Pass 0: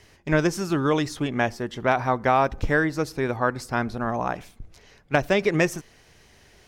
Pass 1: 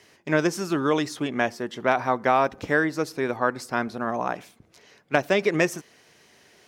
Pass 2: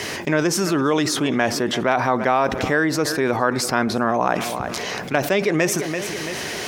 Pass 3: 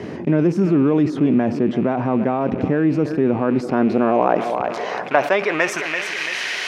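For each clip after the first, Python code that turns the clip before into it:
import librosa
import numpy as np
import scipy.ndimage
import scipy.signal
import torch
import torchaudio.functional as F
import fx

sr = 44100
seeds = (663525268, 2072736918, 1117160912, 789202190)

y1 = scipy.signal.sosfilt(scipy.signal.butter(2, 190.0, 'highpass', fs=sr, output='sos'), x)
y1 = fx.notch(y1, sr, hz=820.0, q=26.0)
y2 = fx.echo_feedback(y1, sr, ms=336, feedback_pct=27, wet_db=-22.5)
y2 = fx.env_flatten(y2, sr, amount_pct=70)
y3 = fx.rattle_buzz(y2, sr, strikes_db=-32.0, level_db=-19.0)
y3 = fx.filter_sweep_bandpass(y3, sr, from_hz=210.0, to_hz=2300.0, start_s=3.32, end_s=6.38, q=1.1)
y3 = F.gain(torch.from_numpy(y3), 7.5).numpy()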